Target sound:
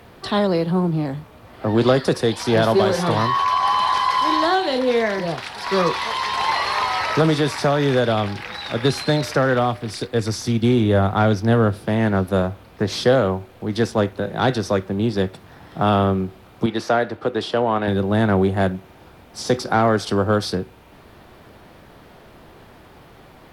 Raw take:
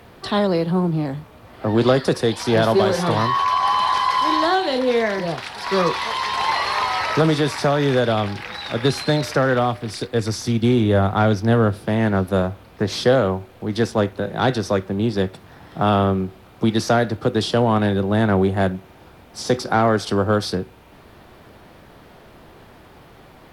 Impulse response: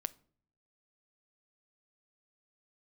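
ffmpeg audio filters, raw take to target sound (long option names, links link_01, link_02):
-filter_complex "[0:a]asettb=1/sr,asplit=3[link_01][link_02][link_03];[link_01]atrim=end=16.664[link_04];[link_02]atrim=start=16.66:end=17.88,asetpts=PTS-STARTPTS,afade=type=in:duration=0.004:curve=qsin,afade=type=out:start_time=1.216:duration=0.004:curve=qsin,bass=frequency=250:gain=-11,treble=frequency=4000:gain=-10[link_05];[link_03]atrim=start=17.876[link_06];[link_04][link_05]acrossfade=duration=0.004:curve1=hsin:curve2=qsin[link_07];[link_07][link_06]acrossfade=duration=0.004:curve1=qsin:curve2=hsin"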